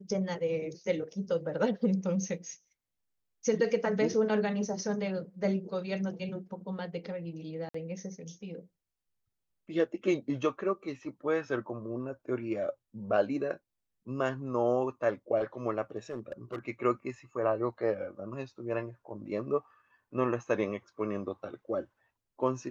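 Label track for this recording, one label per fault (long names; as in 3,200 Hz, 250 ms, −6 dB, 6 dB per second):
7.690000	7.740000	drop-out 54 ms
16.100000	16.590000	clipping −32 dBFS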